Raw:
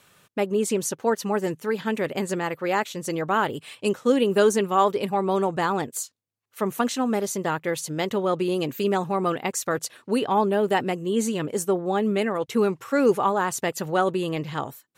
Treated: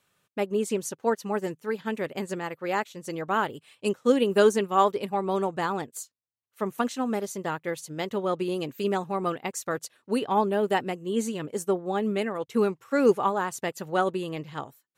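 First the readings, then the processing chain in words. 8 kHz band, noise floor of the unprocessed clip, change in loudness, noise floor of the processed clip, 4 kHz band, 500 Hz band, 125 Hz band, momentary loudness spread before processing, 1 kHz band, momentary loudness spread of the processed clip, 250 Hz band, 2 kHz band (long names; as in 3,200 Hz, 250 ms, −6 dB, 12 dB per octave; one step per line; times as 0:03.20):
−7.0 dB, −63 dBFS, −3.0 dB, −76 dBFS, −4.0 dB, −2.5 dB, −5.0 dB, 8 LU, −3.0 dB, 11 LU, −3.5 dB, −3.5 dB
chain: expander for the loud parts 1.5 to 1, over −42 dBFS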